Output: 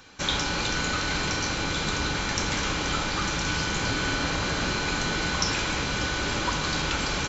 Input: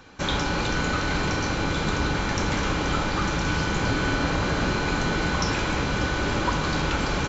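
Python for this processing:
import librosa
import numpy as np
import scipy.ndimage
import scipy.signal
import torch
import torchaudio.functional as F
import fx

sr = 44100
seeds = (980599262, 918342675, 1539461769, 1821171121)

y = fx.high_shelf(x, sr, hz=2100.0, db=10.5)
y = y * librosa.db_to_amplitude(-5.0)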